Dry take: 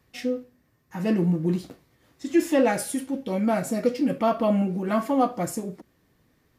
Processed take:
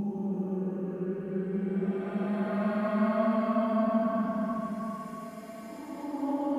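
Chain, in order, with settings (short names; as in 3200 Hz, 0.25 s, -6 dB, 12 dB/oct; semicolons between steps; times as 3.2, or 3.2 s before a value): tilt -2 dB/oct; Paulstretch 21×, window 0.10 s, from 4.79; gain -8 dB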